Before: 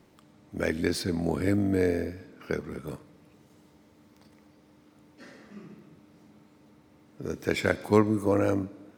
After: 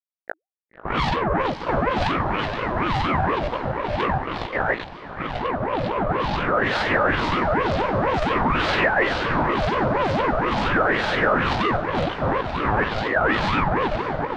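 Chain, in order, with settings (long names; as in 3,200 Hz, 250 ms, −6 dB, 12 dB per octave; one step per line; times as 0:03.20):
camcorder AGC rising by 17 dB per second
high-pass filter 48 Hz
in parallel at −2 dB: downward compressor, threshold −35 dBFS, peak gain reduction 19.5 dB
on the sum: LFO wah 0.76 Hz 200–1,200 Hz, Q 4.4
fuzz pedal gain 46 dB, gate −50 dBFS
time stretch by overlap-add 1.6×, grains 94 ms
power curve on the samples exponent 0.7
auto-filter low-pass sine 2.1 Hz 940–4,100 Hz
on a send: feedback delay with all-pass diffusion 566 ms, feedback 54%, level −14 dB
on the sum: ring modulator whose carrier an LFO sweeps 560 Hz, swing 45%, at 4.2 Hz
level −4.5 dB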